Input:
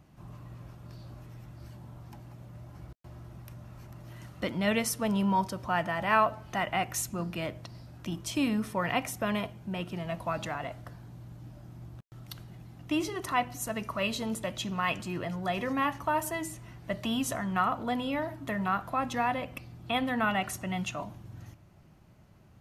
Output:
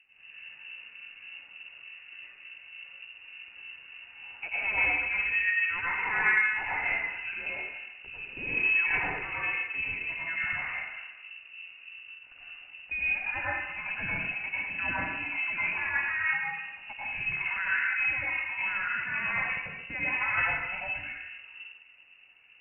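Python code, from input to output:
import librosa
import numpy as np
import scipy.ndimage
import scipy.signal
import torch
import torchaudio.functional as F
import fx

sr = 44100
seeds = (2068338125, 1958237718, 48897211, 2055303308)

y = fx.harmonic_tremolo(x, sr, hz=3.4, depth_pct=70, crossover_hz=1400.0)
y = fx.rev_plate(y, sr, seeds[0], rt60_s=1.2, hf_ratio=0.55, predelay_ms=80, drr_db=-8.0)
y = fx.freq_invert(y, sr, carrier_hz=2800)
y = F.gain(torch.from_numpy(y), -5.0).numpy()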